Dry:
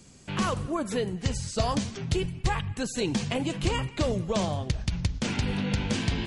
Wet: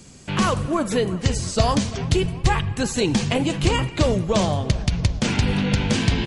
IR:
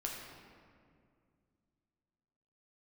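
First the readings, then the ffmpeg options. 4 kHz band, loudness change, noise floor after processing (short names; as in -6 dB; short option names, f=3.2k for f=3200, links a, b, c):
+7.5 dB, +7.5 dB, -37 dBFS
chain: -filter_complex "[0:a]asplit=2[a][b];[b]adelay=341,lowpass=f=2.7k:p=1,volume=-17dB,asplit=2[c][d];[d]adelay=341,lowpass=f=2.7k:p=1,volume=0.55,asplit=2[e][f];[f]adelay=341,lowpass=f=2.7k:p=1,volume=0.55,asplit=2[g][h];[h]adelay=341,lowpass=f=2.7k:p=1,volume=0.55,asplit=2[i][j];[j]adelay=341,lowpass=f=2.7k:p=1,volume=0.55[k];[a][c][e][g][i][k]amix=inputs=6:normalize=0,asplit=2[l][m];[1:a]atrim=start_sample=2205[n];[m][n]afir=irnorm=-1:irlink=0,volume=-17.5dB[o];[l][o]amix=inputs=2:normalize=0,volume=6.5dB"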